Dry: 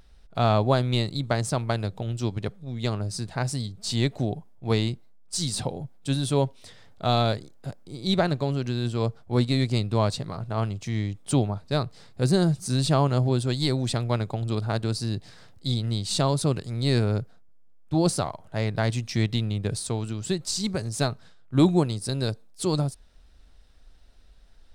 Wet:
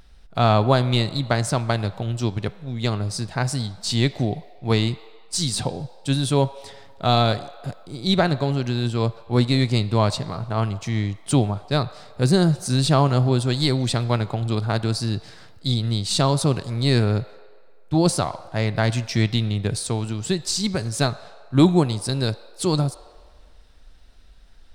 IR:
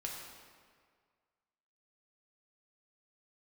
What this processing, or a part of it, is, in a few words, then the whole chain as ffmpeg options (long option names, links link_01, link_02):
filtered reverb send: -filter_complex "[0:a]asplit=2[link_01][link_02];[link_02]highpass=frequency=480:width=0.5412,highpass=frequency=480:width=1.3066,lowpass=5600[link_03];[1:a]atrim=start_sample=2205[link_04];[link_03][link_04]afir=irnorm=-1:irlink=0,volume=-11dB[link_05];[link_01][link_05]amix=inputs=2:normalize=0,volume=4dB"